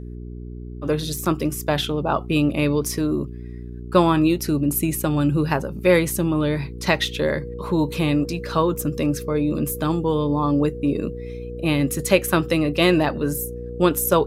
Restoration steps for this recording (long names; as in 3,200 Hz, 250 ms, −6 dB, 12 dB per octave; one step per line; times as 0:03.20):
hum removal 60.1 Hz, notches 7
notch filter 480 Hz, Q 30